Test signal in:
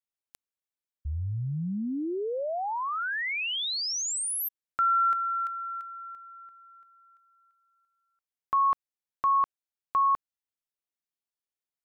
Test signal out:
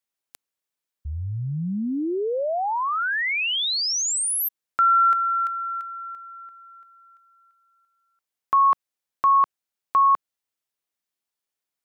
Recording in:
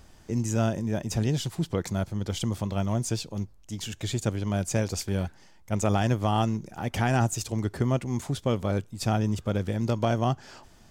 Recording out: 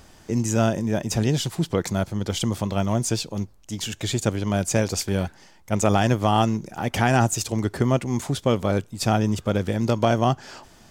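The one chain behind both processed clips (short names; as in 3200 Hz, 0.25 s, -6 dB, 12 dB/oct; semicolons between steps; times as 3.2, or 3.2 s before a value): low shelf 120 Hz -7 dB; gain +6.5 dB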